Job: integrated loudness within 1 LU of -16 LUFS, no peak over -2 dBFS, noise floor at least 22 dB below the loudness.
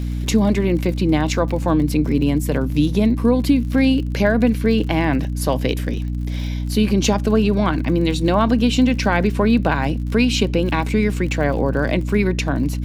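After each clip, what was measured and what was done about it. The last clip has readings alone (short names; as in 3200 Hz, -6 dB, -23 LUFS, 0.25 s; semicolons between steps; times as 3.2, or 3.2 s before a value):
ticks 57/s; hum 60 Hz; harmonics up to 300 Hz; hum level -21 dBFS; loudness -18.5 LUFS; peak -3.0 dBFS; loudness target -16.0 LUFS
-> de-click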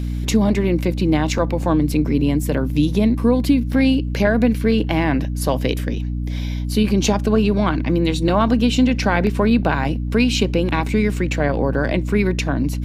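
ticks 0.23/s; hum 60 Hz; harmonics up to 300 Hz; hum level -21 dBFS
-> notches 60/120/180/240/300 Hz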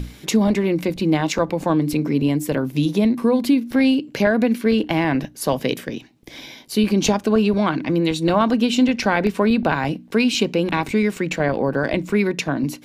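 hum none; loudness -20.0 LUFS; peak -4.5 dBFS; loudness target -16.0 LUFS
-> gain +4 dB; limiter -2 dBFS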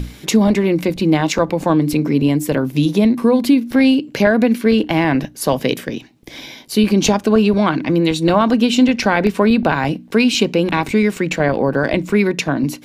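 loudness -16.0 LUFS; peak -2.0 dBFS; noise floor -40 dBFS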